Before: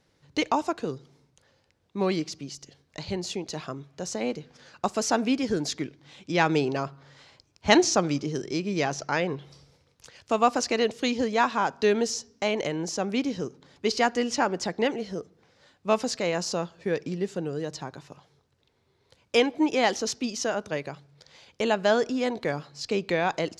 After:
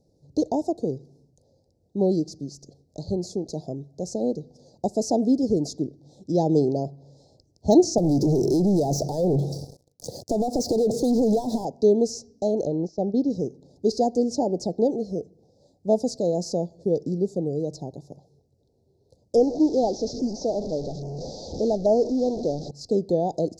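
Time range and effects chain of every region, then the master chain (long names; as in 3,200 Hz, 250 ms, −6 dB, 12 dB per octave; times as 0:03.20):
0:07.98–0:11.65: high-pass filter 83 Hz 24 dB per octave + downward compressor 10 to 1, threshold −33 dBFS + leveller curve on the samples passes 5
0:12.65–0:13.30: low-pass filter 5,400 Hz 24 dB per octave + noise gate −33 dBFS, range −13 dB
0:19.36–0:22.71: linear delta modulator 32 kbit/s, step −26.5 dBFS + parametric band 110 Hz −9.5 dB 0.9 octaves + auto-filter notch saw down 1.2 Hz 870–4,200 Hz
whole clip: de-essing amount 40%; inverse Chebyshev band-stop filter 1,100–3,000 Hz, stop band 40 dB; high-shelf EQ 2,000 Hz −9.5 dB; level +5 dB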